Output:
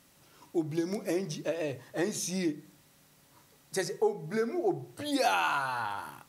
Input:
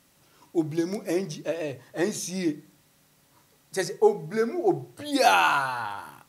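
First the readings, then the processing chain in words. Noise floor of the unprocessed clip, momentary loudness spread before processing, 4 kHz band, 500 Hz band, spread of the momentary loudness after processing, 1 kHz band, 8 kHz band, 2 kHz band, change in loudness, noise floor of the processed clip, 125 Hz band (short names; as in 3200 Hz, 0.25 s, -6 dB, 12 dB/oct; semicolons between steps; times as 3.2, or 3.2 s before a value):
-63 dBFS, 12 LU, -5.5 dB, -5.5 dB, 8 LU, -7.0 dB, -3.0 dB, -6.5 dB, -5.5 dB, -63 dBFS, -3.0 dB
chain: compressor 2:1, threshold -30 dBFS, peak gain reduction 9.5 dB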